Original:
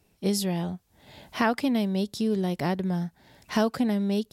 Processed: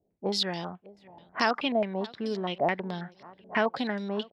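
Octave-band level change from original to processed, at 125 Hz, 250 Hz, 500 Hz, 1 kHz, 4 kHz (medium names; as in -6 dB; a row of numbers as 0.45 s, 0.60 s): -9.0 dB, -8.0 dB, -0.5 dB, +1.5 dB, +3.0 dB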